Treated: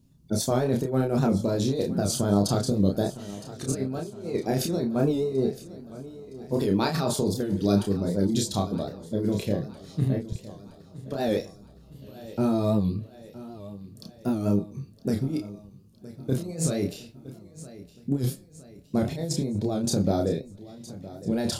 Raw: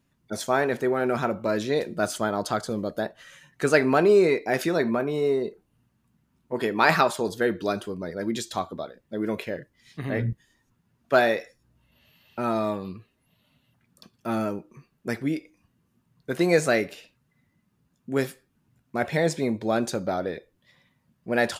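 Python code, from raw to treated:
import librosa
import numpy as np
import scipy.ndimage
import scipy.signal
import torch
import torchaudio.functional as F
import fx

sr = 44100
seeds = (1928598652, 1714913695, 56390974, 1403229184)

p1 = fx.curve_eq(x, sr, hz=(140.0, 540.0, 1900.0, 4300.0), db=(0, -11, -24, -8))
p2 = fx.over_compress(p1, sr, threshold_db=-34.0, ratio=-0.5)
p3 = fx.doubler(p2, sr, ms=30.0, db=-3.0)
p4 = p3 + fx.echo_feedback(p3, sr, ms=964, feedback_pct=55, wet_db=-17, dry=0)
p5 = fx.record_warp(p4, sr, rpm=78.0, depth_cents=100.0)
y = F.gain(torch.from_numpy(p5), 8.5).numpy()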